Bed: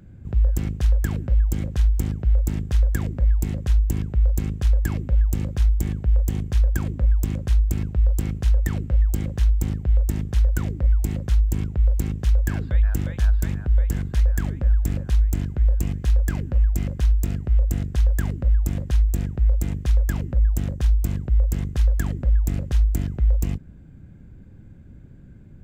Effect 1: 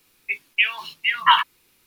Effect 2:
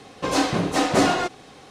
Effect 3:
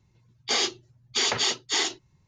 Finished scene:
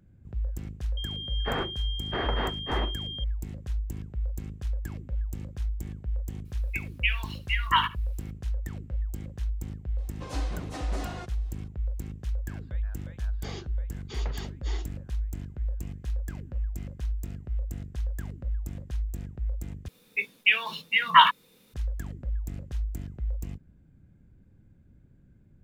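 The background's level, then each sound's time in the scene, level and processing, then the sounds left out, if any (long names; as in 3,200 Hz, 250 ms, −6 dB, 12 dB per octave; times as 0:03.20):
bed −12.5 dB
0:00.97: mix in 3 −1.5 dB + switching amplifier with a slow clock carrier 3,200 Hz
0:06.45: mix in 1 −8 dB + single-tap delay 74 ms −17 dB
0:09.98: mix in 2 −17 dB + brickwall limiter −11 dBFS
0:12.94: mix in 3 −14.5 dB + spectral tilt −3.5 dB per octave
0:19.88: overwrite with 1 −2.5 dB + hollow resonant body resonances 200/470/3,600 Hz, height 16 dB, ringing for 35 ms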